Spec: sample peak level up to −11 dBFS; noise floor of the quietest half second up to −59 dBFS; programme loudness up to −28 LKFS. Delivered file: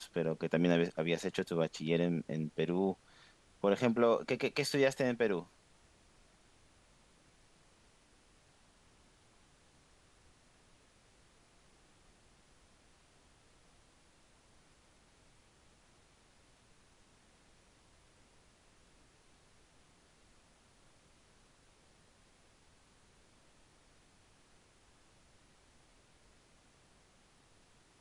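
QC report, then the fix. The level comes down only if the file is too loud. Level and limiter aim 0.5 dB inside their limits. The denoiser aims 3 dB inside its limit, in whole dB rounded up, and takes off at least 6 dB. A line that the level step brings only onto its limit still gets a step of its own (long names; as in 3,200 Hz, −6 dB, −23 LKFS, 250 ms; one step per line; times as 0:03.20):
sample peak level −15.5 dBFS: in spec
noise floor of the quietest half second −66 dBFS: in spec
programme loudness −33.5 LKFS: in spec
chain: no processing needed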